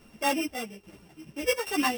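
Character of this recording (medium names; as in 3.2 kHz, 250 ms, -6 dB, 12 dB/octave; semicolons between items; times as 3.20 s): a buzz of ramps at a fixed pitch in blocks of 16 samples; tremolo saw down 1.2 Hz, depth 65%; a shimmering, thickened sound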